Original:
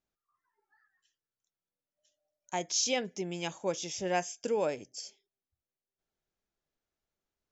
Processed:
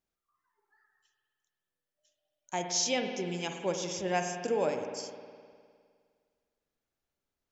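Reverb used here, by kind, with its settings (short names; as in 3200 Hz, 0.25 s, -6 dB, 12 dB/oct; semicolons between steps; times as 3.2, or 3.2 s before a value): spring tank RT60 2 s, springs 51 ms, chirp 70 ms, DRR 4.5 dB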